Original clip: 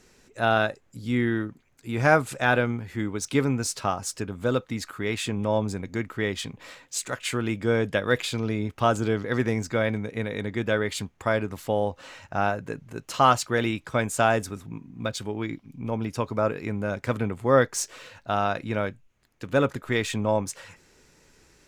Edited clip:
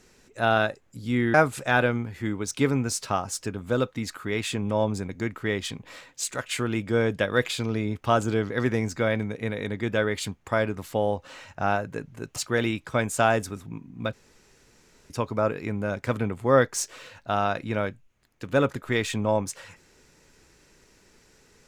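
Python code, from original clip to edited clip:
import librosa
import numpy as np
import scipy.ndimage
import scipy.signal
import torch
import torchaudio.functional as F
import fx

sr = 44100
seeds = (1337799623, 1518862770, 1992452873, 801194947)

y = fx.edit(x, sr, fx.cut(start_s=1.34, length_s=0.74),
    fx.cut(start_s=13.1, length_s=0.26),
    fx.room_tone_fill(start_s=15.13, length_s=0.97), tone=tone)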